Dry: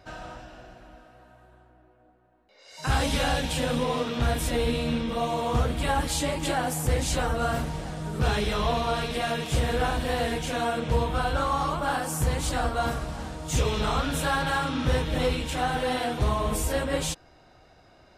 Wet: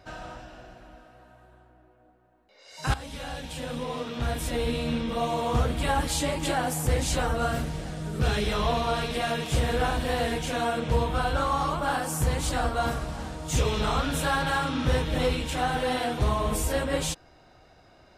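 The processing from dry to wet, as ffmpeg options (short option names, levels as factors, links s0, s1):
-filter_complex "[0:a]asettb=1/sr,asplit=3[s0][s1][s2];[s0]atrim=end=7.484[s3];[s1]atrim=start=7.48:end=8.45,asetpts=PTS-STARTPTS,afade=t=in:d=0.004:c=qsin,afade=t=out:st=0.966:d=0.004:c=qsin,equalizer=f=940:t=o:w=0.72:g=-6[s4];[s2]atrim=start=8.446[s5];[s3][s4]acrossfade=d=0.004:c1=hsin:c2=qsin[s6];[s6][s5]acrossfade=d=0.004:c1=qsin:c2=hsin,asplit=2[s7][s8];[s7]atrim=end=2.94,asetpts=PTS-STARTPTS,afade=t=out:st=2.936:d=0.004:c=hsin:silence=0.158489[s9];[s8]atrim=start=2.94,asetpts=PTS-STARTPTS,afade=t=in:d=2.3:silence=0.158489[s10];[s9][s10]concat=n=2:v=0:a=1"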